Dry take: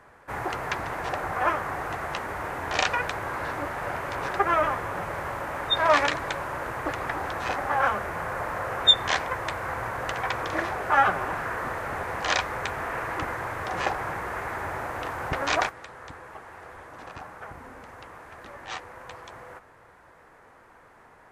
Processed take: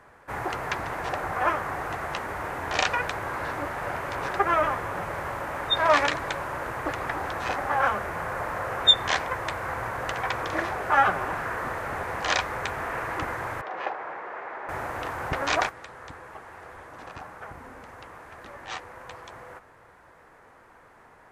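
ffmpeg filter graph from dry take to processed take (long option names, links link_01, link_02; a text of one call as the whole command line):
ffmpeg -i in.wav -filter_complex "[0:a]asettb=1/sr,asplit=3[link_01][link_02][link_03];[link_01]atrim=end=13.614[link_04];[link_02]atrim=start=13.61:end=14.69,asetpts=PTS-STARTPTS,afade=type=in:duration=0.004:curve=qsin,afade=type=out:start_time=1.076:duration=0.004:curve=qsin,highpass=460,lowpass=2200,equalizer=frequency=1400:width=0.75:gain=-4.5[link_05];[link_03]atrim=start=14.686[link_06];[link_04][link_05]acrossfade=duration=0.004:curve1=hsin:curve2=qsin[link_07];[link_07][link_06]acrossfade=duration=0.004:curve1=qsin:curve2=hsin" out.wav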